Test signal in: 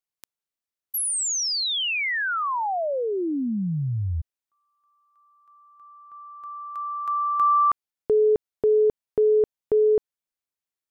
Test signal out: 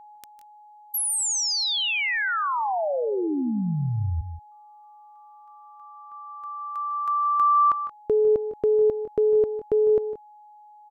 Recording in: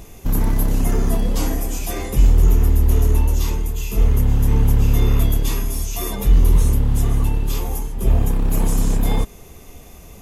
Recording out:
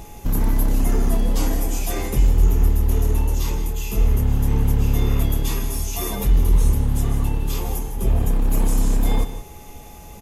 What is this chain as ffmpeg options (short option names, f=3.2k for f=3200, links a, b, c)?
-filter_complex "[0:a]asplit=2[a][b];[b]acompressor=threshold=-24dB:ratio=6:attack=43:release=36:knee=6:detection=rms,volume=-1dB[c];[a][c]amix=inputs=2:normalize=0,aeval=exprs='val(0)+0.01*sin(2*PI*840*n/s)':c=same,aecho=1:1:154|177:0.211|0.168,volume=-5dB"